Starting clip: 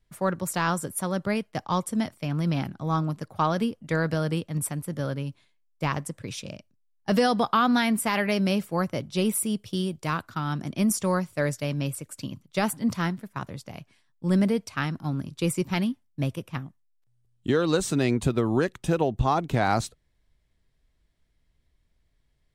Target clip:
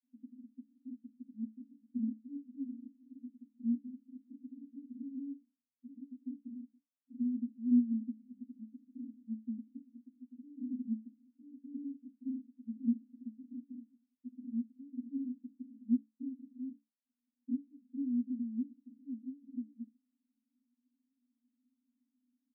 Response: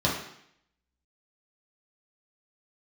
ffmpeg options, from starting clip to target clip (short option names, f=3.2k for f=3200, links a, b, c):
-filter_complex "[0:a]acompressor=threshold=-36dB:ratio=2.5,alimiter=level_in=7dB:limit=-24dB:level=0:latency=1,volume=-7dB,asuperpass=centerf=250:order=20:qfactor=3.9,asplit=2[a][b];[b]adelay=20,volume=-7dB[c];[a][c]amix=inputs=2:normalize=0,volume=9.5dB"